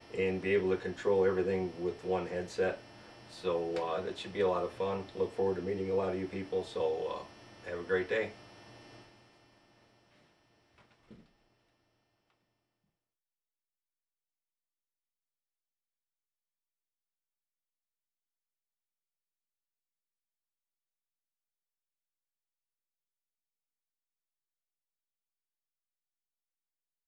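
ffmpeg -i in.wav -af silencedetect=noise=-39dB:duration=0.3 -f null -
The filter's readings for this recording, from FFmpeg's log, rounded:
silence_start: 2.75
silence_end: 3.38 | silence_duration: 0.63
silence_start: 7.25
silence_end: 7.66 | silence_duration: 0.41
silence_start: 8.29
silence_end: 27.08 | silence_duration: 18.79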